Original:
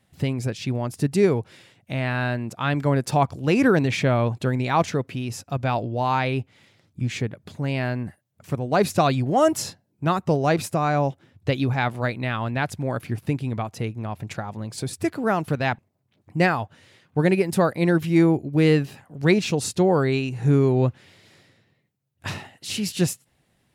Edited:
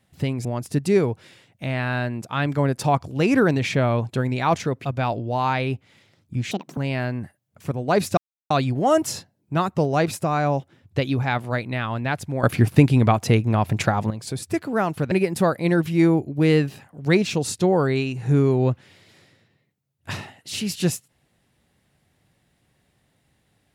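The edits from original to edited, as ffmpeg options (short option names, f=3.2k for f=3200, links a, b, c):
-filter_complex "[0:a]asplit=9[a][b][c][d][e][f][g][h][i];[a]atrim=end=0.452[j];[b]atrim=start=0.728:end=5.132[k];[c]atrim=start=5.508:end=7.174[l];[d]atrim=start=7.17:end=7.61,asetpts=PTS-STARTPTS,asetrate=73647,aresample=44100,atrim=end_sample=11619,asetpts=PTS-STARTPTS[m];[e]atrim=start=7.606:end=9.01,asetpts=PTS-STARTPTS,afade=t=out:st=1.4:d=0.004:c=hsin,apad=pad_dur=0.33[n];[f]atrim=start=9.01:end=12.942,asetpts=PTS-STARTPTS,afade=t=in:d=0.004:c=hsin[o];[g]atrim=start=12.938:end=14.612,asetpts=PTS-STARTPTS,volume=10.5dB[p];[h]atrim=start=14.608:end=15.622[q];[i]atrim=start=17.278[r];[j][k]acrossfade=d=0.004:c1=hsin:c2=hsin[s];[s][l]acrossfade=d=0.004:c1=hsin:c2=hsin[t];[t][m]acrossfade=d=0.004:c1=hsin:c2=hsin[u];[n][o]concat=n=2:v=0:a=1[v];[u][v]acrossfade=d=0.004:c1=hsin:c2=hsin[w];[w][p]acrossfade=d=0.004:c1=hsin:c2=hsin[x];[x][q]acrossfade=d=0.004:c1=hsin:c2=hsin[y];[y][r]acrossfade=d=0.004:c1=hsin:c2=hsin"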